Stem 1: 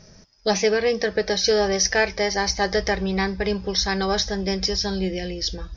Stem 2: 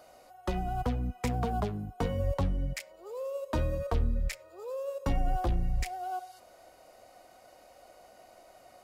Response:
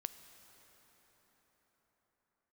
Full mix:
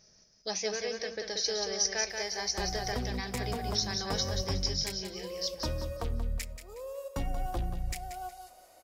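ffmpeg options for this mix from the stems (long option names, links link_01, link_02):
-filter_complex "[0:a]bass=frequency=250:gain=-5,treble=frequency=4000:gain=3,volume=-16dB,asplit=2[link_01][link_02];[link_02]volume=-5dB[link_03];[1:a]adelay=2100,volume=-5dB,asplit=2[link_04][link_05];[link_05]volume=-10dB[link_06];[link_03][link_06]amix=inputs=2:normalize=0,aecho=0:1:182|364|546|728:1|0.31|0.0961|0.0298[link_07];[link_01][link_04][link_07]amix=inputs=3:normalize=0,highshelf=frequency=4400:gain=10"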